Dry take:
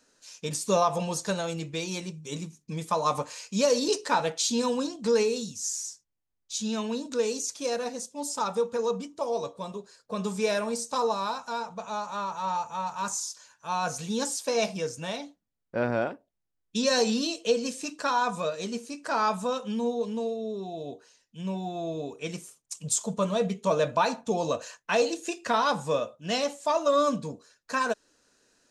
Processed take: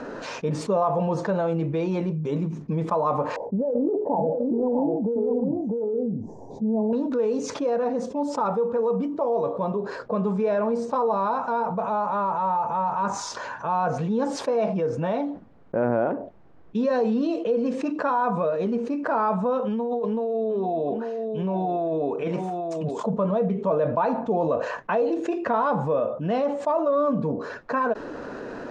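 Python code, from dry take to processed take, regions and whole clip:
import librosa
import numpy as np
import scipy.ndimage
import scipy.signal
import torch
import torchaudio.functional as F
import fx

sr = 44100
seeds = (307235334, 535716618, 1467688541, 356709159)

y = fx.chain(x, sr, fx.ellip_lowpass(hz=820.0, order=4, stop_db=40),
    fx.over_compress(threshold_db=-30.0, ratio=-1.0),
    fx.echo_single(ms=650, db=-6.0), at=(3.36, 6.93))
y = fx.chain(y, sr, fx.low_shelf(hz=320.0, db=-8.5),
    fx.over_compress(threshold_db=-37.0, ratio=-1.0),
    fx.echo_single(ms=841, db=-13.0), at=(19.65, 23.0))
y = scipy.signal.sosfilt(scipy.signal.butter(2, 1000.0, 'lowpass', fs=sr, output='sos'), y)
y = fx.low_shelf(y, sr, hz=110.0, db=-9.5)
y = fx.env_flatten(y, sr, amount_pct=70)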